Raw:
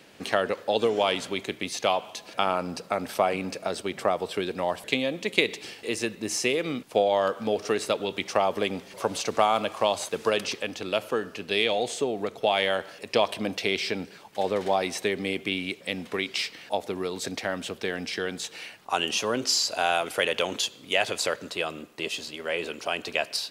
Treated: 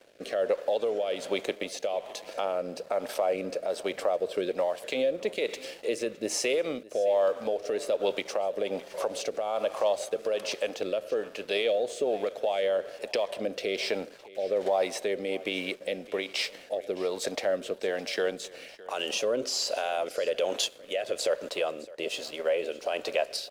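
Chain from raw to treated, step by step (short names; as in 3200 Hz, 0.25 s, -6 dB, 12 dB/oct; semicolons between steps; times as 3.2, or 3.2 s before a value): HPF 330 Hz 6 dB/oct; bell 560 Hz +14.5 dB 0.79 oct; compressor, threshold -18 dBFS, peak gain reduction 10 dB; limiter -16 dBFS, peak gain reduction 9.5 dB; crossover distortion -50 dBFS; rotary speaker horn 1.2 Hz; echo 0.612 s -20 dB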